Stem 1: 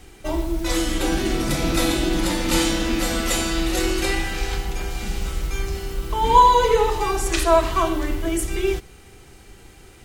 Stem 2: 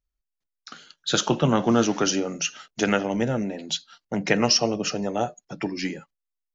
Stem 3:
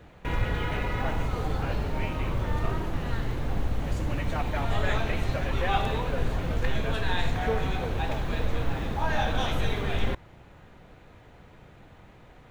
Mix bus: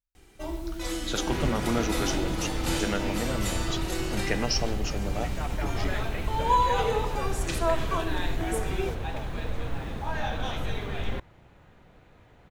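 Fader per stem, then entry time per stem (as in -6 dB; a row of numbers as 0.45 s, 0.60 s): -10.0 dB, -8.5 dB, -4.0 dB; 0.15 s, 0.00 s, 1.05 s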